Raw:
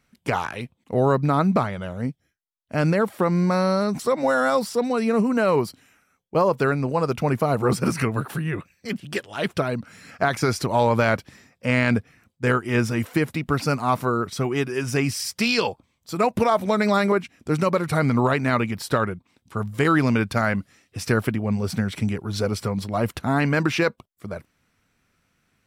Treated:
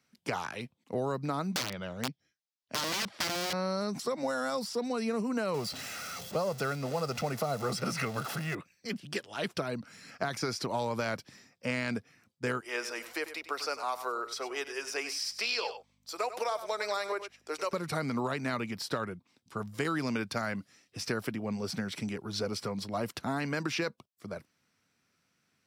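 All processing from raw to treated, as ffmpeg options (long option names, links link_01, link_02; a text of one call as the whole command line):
ffmpeg -i in.wav -filter_complex "[0:a]asettb=1/sr,asplit=3[link_01][link_02][link_03];[link_01]atrim=end=1.544[link_04];[link_02]atrim=start=1.54:end=3.53,asetpts=PTS-STARTPTS,afade=type=in:duration=0.004:curve=qsin,afade=type=out:start_time=1.986:duration=0.004:curve=qsin,lowpass=4900,aeval=exprs='(mod(8.41*val(0)+1,2)-1)/8.41':channel_layout=same,highshelf=frequency=3700:gain=10[link_05];[link_03]atrim=start=3.526[link_06];[link_04][link_05]acrossfade=duration=0.004:curve1=hsin:curve2=qsin[link_07];[link_07][link_06]acrossfade=duration=0.004:curve1=qsin:curve2=hsin,asettb=1/sr,asplit=3[link_08][link_09][link_10];[link_08]atrim=end=5.544[link_11];[link_09]atrim=start=5.54:end=8.55,asetpts=PTS-STARTPTS,afade=type=in:duration=0.004:curve=qsin,afade=type=out:start_time=3.006:duration=0.004:curve=qsin,aeval=exprs='val(0)+0.5*0.0316*sgn(val(0))':channel_layout=same,aecho=1:1:1.5:0.49,atrim=end_sample=132741[link_12];[link_10]atrim=start=8.546[link_13];[link_11][link_12]acrossfade=duration=0.004:curve1=hsin:curve2=qsin[link_14];[link_14][link_13]acrossfade=duration=0.004:curve1=qsin:curve2=hsin,asettb=1/sr,asplit=3[link_15][link_16][link_17];[link_15]atrim=end=12.604[link_18];[link_16]atrim=start=12.6:end=17.73,asetpts=PTS-STARTPTS,afade=type=in:duration=0.004:curve=qsin,afade=type=out:start_time=5.126:duration=0.004:curve=qsin,highpass=frequency=450:width=0.5412,highpass=frequency=450:width=1.3066,aeval=exprs='val(0)+0.00141*(sin(2*PI*50*n/s)+sin(2*PI*2*50*n/s)/2+sin(2*PI*3*50*n/s)/3+sin(2*PI*4*50*n/s)/4+sin(2*PI*5*50*n/s)/5)':channel_layout=same,aecho=1:1:97:0.224,atrim=end_sample=226233[link_19];[link_17]atrim=start=17.726[link_20];[link_18][link_19]acrossfade=duration=0.004:curve1=hsin:curve2=qsin[link_21];[link_21][link_20]acrossfade=duration=0.004:curve1=qsin:curve2=hsin,highpass=120,equalizer=frequency=5100:width_type=o:width=0.77:gain=7,acrossover=split=210|4800[link_22][link_23][link_24];[link_22]acompressor=threshold=-34dB:ratio=4[link_25];[link_23]acompressor=threshold=-23dB:ratio=4[link_26];[link_24]acompressor=threshold=-35dB:ratio=4[link_27];[link_25][link_26][link_27]amix=inputs=3:normalize=0,volume=-7dB" out.wav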